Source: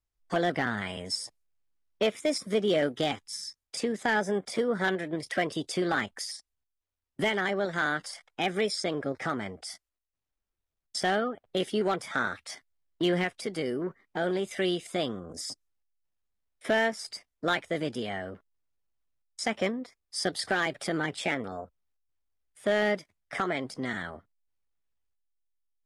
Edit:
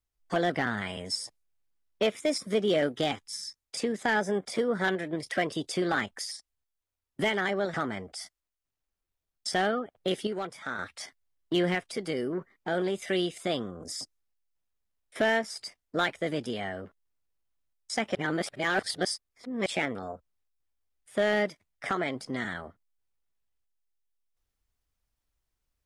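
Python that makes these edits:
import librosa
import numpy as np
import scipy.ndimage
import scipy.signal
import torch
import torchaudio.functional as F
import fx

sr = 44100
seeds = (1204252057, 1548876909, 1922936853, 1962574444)

y = fx.edit(x, sr, fx.cut(start_s=7.74, length_s=1.49),
    fx.clip_gain(start_s=11.76, length_s=0.52, db=-6.5),
    fx.reverse_span(start_s=19.64, length_s=1.51), tone=tone)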